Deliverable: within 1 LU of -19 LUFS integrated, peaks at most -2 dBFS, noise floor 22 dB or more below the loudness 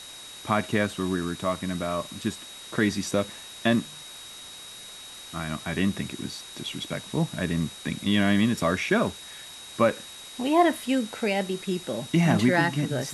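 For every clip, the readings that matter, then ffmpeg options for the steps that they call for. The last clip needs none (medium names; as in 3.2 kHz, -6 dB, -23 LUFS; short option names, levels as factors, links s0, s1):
steady tone 3.8 kHz; tone level -43 dBFS; noise floor -43 dBFS; noise floor target -49 dBFS; loudness -26.5 LUFS; peak level -7.5 dBFS; loudness target -19.0 LUFS
-> -af "bandreject=f=3800:w=30"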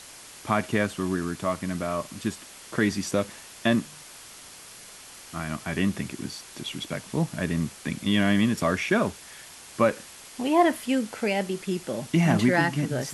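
steady tone not found; noise floor -46 dBFS; noise floor target -49 dBFS
-> -af "afftdn=nr=6:nf=-46"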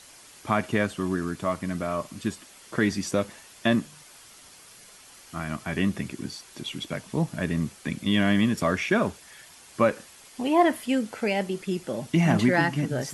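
noise floor -51 dBFS; loudness -26.5 LUFS; peak level -8.0 dBFS; loudness target -19.0 LUFS
-> -af "volume=2.37,alimiter=limit=0.794:level=0:latency=1"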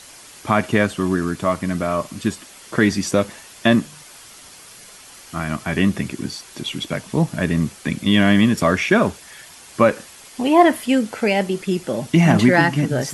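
loudness -19.0 LUFS; peak level -2.0 dBFS; noise floor -43 dBFS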